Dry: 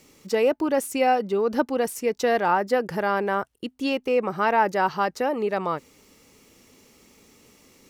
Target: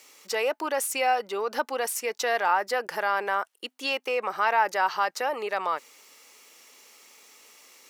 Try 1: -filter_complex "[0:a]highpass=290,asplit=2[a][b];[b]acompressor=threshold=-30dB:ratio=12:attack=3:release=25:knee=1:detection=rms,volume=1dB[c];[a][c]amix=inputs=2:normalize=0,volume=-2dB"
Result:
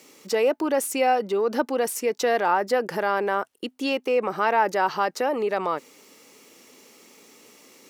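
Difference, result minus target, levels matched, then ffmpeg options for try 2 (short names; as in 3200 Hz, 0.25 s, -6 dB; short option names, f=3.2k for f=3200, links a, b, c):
250 Hz band +10.0 dB
-filter_complex "[0:a]highpass=790,asplit=2[a][b];[b]acompressor=threshold=-30dB:ratio=12:attack=3:release=25:knee=1:detection=rms,volume=1dB[c];[a][c]amix=inputs=2:normalize=0,volume=-2dB"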